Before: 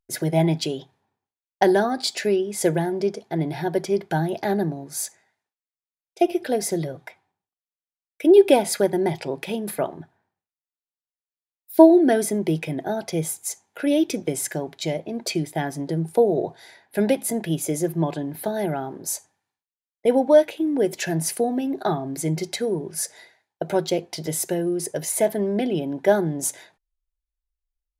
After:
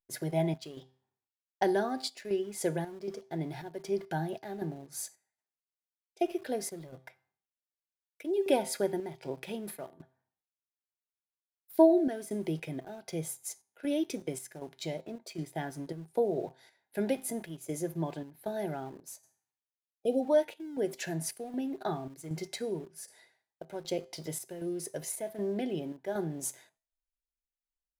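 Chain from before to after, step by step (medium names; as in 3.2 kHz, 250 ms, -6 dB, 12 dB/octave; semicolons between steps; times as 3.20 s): spectral selection erased 19.92–20.23 s, 780–2400 Hz; feedback comb 130 Hz, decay 0.45 s, harmonics all, mix 50%; square tremolo 1.3 Hz, depth 60%, duty 70%; in parallel at -7.5 dB: small samples zeroed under -39.5 dBFS; on the sum: trim -8.5 dB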